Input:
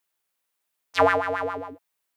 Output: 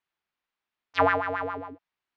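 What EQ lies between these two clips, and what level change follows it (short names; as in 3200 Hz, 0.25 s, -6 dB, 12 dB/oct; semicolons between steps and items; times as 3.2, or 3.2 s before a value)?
air absorption 220 m; bell 530 Hz -5.5 dB 0.74 oct; 0.0 dB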